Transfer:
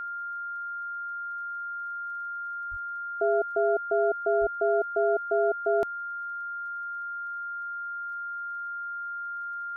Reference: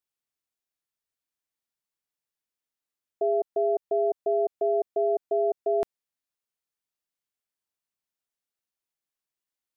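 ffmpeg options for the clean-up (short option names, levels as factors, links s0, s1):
-filter_complex "[0:a]adeclick=t=4,bandreject=f=1400:w=30,asplit=3[s0][s1][s2];[s0]afade=t=out:st=2.7:d=0.02[s3];[s1]highpass=f=140:w=0.5412,highpass=f=140:w=1.3066,afade=t=in:st=2.7:d=0.02,afade=t=out:st=2.82:d=0.02[s4];[s2]afade=t=in:st=2.82:d=0.02[s5];[s3][s4][s5]amix=inputs=3:normalize=0,asplit=3[s6][s7][s8];[s6]afade=t=out:st=4.4:d=0.02[s9];[s7]highpass=f=140:w=0.5412,highpass=f=140:w=1.3066,afade=t=in:st=4.4:d=0.02,afade=t=out:st=4.52:d=0.02[s10];[s8]afade=t=in:st=4.52:d=0.02[s11];[s9][s10][s11]amix=inputs=3:normalize=0"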